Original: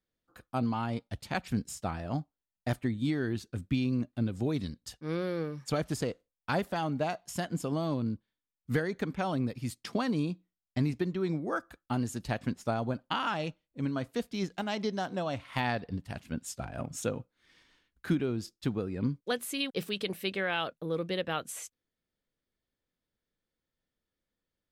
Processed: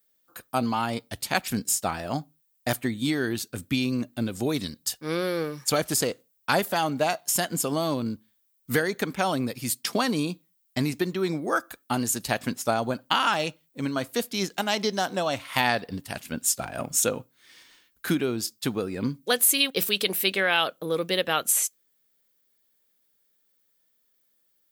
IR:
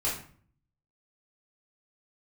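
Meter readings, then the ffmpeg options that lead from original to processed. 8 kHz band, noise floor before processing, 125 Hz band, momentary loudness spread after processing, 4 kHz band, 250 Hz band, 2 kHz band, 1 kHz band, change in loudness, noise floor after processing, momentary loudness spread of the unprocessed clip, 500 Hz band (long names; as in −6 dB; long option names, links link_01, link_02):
+18.0 dB, below −85 dBFS, 0.0 dB, 8 LU, +11.5 dB, +3.5 dB, +9.5 dB, +8.0 dB, +7.5 dB, −69 dBFS, 8 LU, +6.5 dB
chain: -filter_complex "[0:a]aemphasis=mode=production:type=bsi,asplit=2[link_01][link_02];[1:a]atrim=start_sample=2205,afade=type=out:start_time=0.4:duration=0.01,atrim=end_sample=18081,asetrate=79380,aresample=44100[link_03];[link_02][link_03]afir=irnorm=-1:irlink=0,volume=-30dB[link_04];[link_01][link_04]amix=inputs=2:normalize=0,volume=8dB"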